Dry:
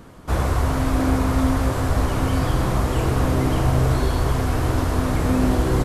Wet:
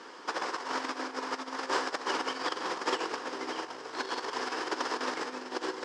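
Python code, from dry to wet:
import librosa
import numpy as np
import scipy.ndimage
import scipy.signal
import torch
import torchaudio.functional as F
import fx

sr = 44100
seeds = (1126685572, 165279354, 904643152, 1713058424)

y = fx.over_compress(x, sr, threshold_db=-23.0, ratio=-0.5)
y = fx.cabinet(y, sr, low_hz=360.0, low_slope=24, high_hz=7100.0, hz=(640.0, 930.0, 1700.0, 3000.0, 5100.0), db=(-9, 4, 5, 4, 10))
y = F.gain(torch.from_numpy(y), -4.0).numpy()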